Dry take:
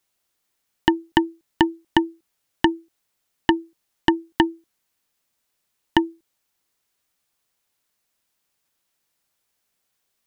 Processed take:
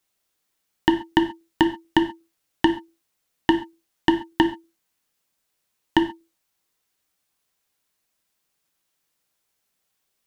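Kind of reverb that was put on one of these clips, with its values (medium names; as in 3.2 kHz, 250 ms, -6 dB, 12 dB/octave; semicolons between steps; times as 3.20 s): gated-style reverb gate 160 ms falling, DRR 5.5 dB; trim -1.5 dB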